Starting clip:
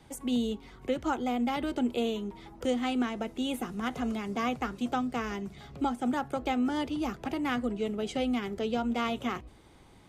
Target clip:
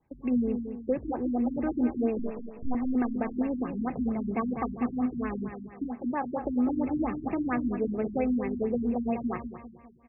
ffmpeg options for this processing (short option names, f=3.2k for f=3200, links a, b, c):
-filter_complex "[0:a]asuperstop=centerf=1400:order=4:qfactor=7.9,asettb=1/sr,asplit=3[a][b][c];[a]atrim=end=2.194[d];[b]atrim=start=2.19:end=2.75,asetpts=PTS-STARTPTS,afade=t=in:d=0.004:c=qsin,afade=t=out:st=0.556:d=0.004:c=qsin,aeval=exprs='abs(val(0))':c=same[e];[c]atrim=start=2.746[f];[d][e]acrossfade=d=0.004:c1=hsin:c2=qsin[g];[g][f]acrossfade=d=0.004:c1=qsin:c2=hsin,asettb=1/sr,asplit=3[h][i][j];[h]atrim=end=5.504[k];[i]atrim=start=5.5:end=6.45,asetpts=PTS-STARTPTS,afade=t=in:d=0.004:c=qsin,afade=t=out:st=0.946:d=0.004:c=qsin,lowshelf=f=210:g=-9[l];[j]atrim=start=6.446[m];[k][l]acrossfade=d=0.004:c1=hsin:c2=qsin[n];[n][m]acrossfade=d=0.004:c1=qsin:c2=hsin,agate=range=-19dB:threshold=-44dB:ratio=16:detection=peak,aecho=1:1:198|396|594|792|990:0.398|0.171|0.0736|0.0317|0.0136,afftfilt=real='re*lt(b*sr/1024,290*pow(2800/290,0.5+0.5*sin(2*PI*4.4*pts/sr)))':imag='im*lt(b*sr/1024,290*pow(2800/290,0.5+0.5*sin(2*PI*4.4*pts/sr)))':win_size=1024:overlap=0.75,volume=2.5dB"